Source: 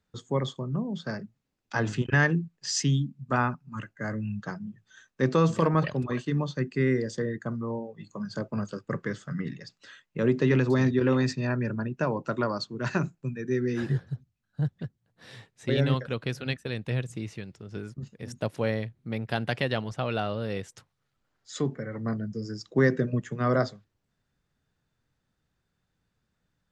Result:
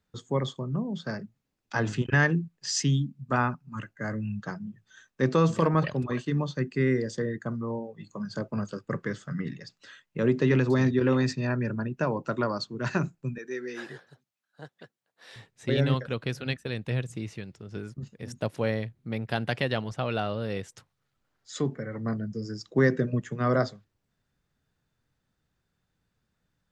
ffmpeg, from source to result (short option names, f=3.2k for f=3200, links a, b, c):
-filter_complex "[0:a]asettb=1/sr,asplit=3[a][b][c];[a]atrim=end=13.384[d];[b]atrim=start=13.38:end=15.36,asetpts=PTS-STARTPTS,afade=t=in:d=0.004:c=qsin,afade=t=out:st=1.976:d=0.004:c=qsin,highpass=520[e];[c]atrim=start=15.356[f];[d][e]acrossfade=d=0.004:c1=hsin:c2=qsin[g];[g][f]acrossfade=d=0.004:c1=qsin:c2=hsin"